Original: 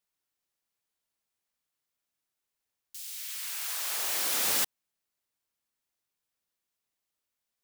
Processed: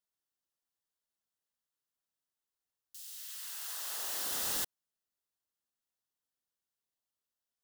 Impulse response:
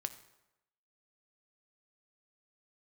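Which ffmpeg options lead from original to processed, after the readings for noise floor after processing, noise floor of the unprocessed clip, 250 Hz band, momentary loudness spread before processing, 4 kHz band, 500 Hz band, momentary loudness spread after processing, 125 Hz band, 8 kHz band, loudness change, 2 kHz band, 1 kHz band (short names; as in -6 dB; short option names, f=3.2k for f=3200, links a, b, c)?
under -85 dBFS, under -85 dBFS, -5.5 dB, 14 LU, -7.0 dB, -6.5 dB, 14 LU, n/a, -6.5 dB, -7.0 dB, -9.0 dB, -7.0 dB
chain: -af "aeval=exprs='(mod(9.44*val(0)+1,2)-1)/9.44':c=same,equalizer=f=2.3k:t=o:w=0.21:g=-12.5,volume=-6.5dB"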